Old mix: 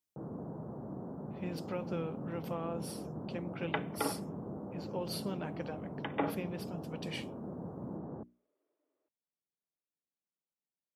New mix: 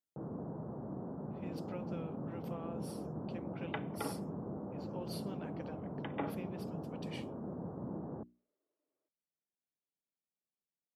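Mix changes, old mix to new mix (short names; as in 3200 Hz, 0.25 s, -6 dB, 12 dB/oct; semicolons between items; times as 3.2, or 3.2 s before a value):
speech -7.5 dB; second sound -6.0 dB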